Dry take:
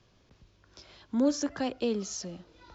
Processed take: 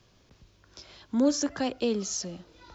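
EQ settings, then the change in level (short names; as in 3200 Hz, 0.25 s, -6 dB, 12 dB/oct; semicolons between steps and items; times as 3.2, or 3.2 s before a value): high shelf 6200 Hz +7 dB; +2.0 dB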